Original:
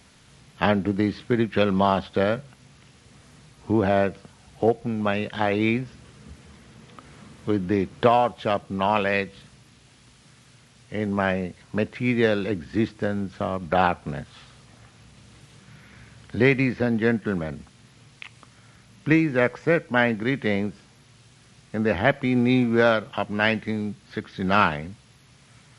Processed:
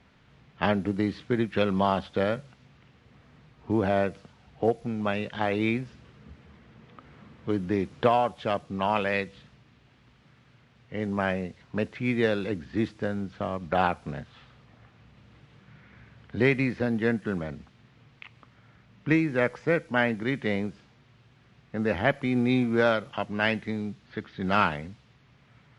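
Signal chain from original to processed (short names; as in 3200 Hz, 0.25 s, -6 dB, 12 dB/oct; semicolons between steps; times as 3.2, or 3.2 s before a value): low-pass opened by the level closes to 2600 Hz, open at -18 dBFS; gain -4 dB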